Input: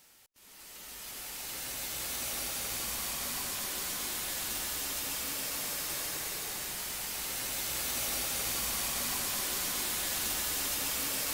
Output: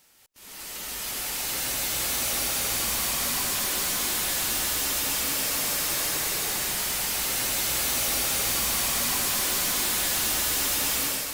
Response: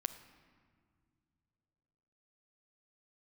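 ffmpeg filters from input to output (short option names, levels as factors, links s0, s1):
-af "dynaudnorm=f=140:g=5:m=3.98,asoftclip=type=tanh:threshold=0.0794"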